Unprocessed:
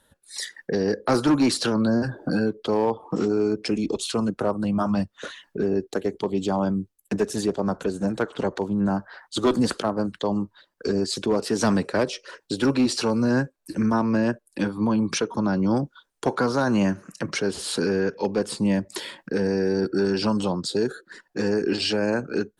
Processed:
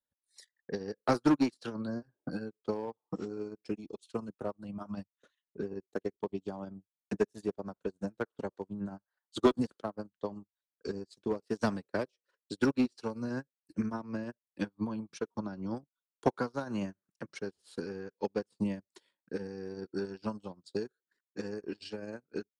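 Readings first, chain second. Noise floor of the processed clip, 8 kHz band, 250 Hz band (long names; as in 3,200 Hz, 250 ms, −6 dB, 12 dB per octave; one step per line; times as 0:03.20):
below −85 dBFS, −21.5 dB, −12.0 dB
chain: transient designer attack +5 dB, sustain −11 dB
expander for the loud parts 2.5 to 1, over −33 dBFS
level −5 dB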